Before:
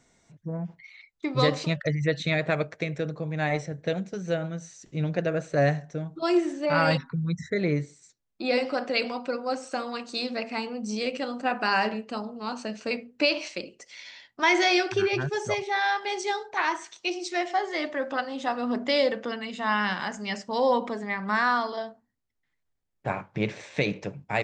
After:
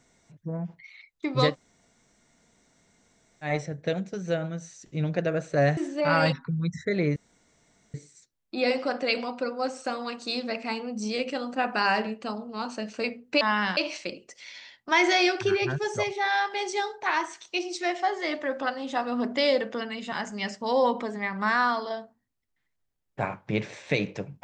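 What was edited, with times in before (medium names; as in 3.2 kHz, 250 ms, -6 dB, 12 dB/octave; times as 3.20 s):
1.51–3.46 s: room tone, crossfade 0.10 s
5.77–6.42 s: delete
7.81 s: insert room tone 0.78 s
19.63–19.99 s: move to 13.28 s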